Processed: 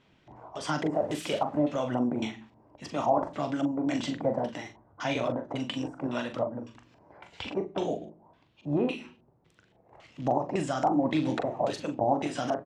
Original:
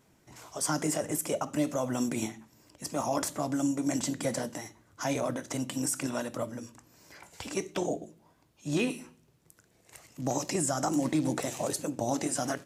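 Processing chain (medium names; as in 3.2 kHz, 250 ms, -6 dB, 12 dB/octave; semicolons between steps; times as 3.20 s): 0.93–1.60 s: zero-crossing glitches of -25 dBFS; LFO low-pass square 1.8 Hz 820–3200 Hz; doubling 41 ms -8 dB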